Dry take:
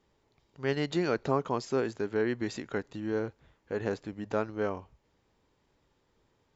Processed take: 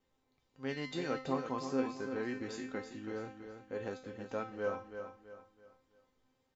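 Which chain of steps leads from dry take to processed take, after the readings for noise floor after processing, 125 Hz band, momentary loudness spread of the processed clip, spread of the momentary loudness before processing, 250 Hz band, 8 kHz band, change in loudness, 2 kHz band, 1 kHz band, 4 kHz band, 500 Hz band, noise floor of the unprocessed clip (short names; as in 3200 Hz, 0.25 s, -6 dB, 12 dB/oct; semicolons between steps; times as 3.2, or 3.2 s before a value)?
-79 dBFS, -10.0 dB, 11 LU, 7 LU, -5.5 dB, n/a, -7.0 dB, -6.0 dB, -5.5 dB, -5.5 dB, -7.5 dB, -73 dBFS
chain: resonator 260 Hz, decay 0.41 s, harmonics all, mix 90%; vibrato 1.9 Hz 16 cents; feedback echo 0.329 s, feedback 37%, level -8.5 dB; gain +7 dB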